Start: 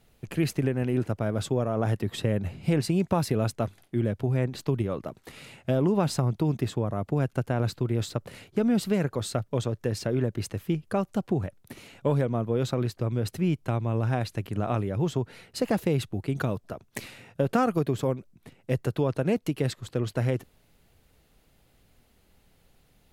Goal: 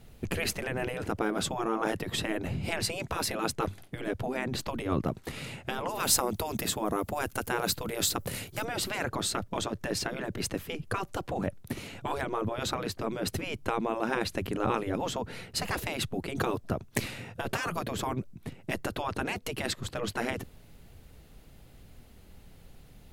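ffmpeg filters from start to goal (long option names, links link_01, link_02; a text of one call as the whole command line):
ffmpeg -i in.wav -filter_complex "[0:a]asettb=1/sr,asplit=3[link_01][link_02][link_03];[link_01]atrim=end=5.894[link_04];[link_02]atrim=start=5.89:end=8.65,asetpts=PTS-STARTPTS,afade=type=in:duration=0.004:curve=qsin,afade=type=out:start_time=2.756:duration=0.004:curve=qsin,aemphasis=mode=production:type=50fm[link_05];[link_03]atrim=start=8.646[link_06];[link_04][link_05]acrossfade=duration=0.004:curve1=hsin:curve2=qsin[link_07];[link_07][link_06]acrossfade=duration=0.004:curve1=qsin:curve2=hsin,afftfilt=real='re*lt(hypot(re,im),0.141)':imag='im*lt(hypot(re,im),0.141)':win_size=1024:overlap=0.75,lowshelf=frequency=300:gain=6.5,volume=5dB" out.wav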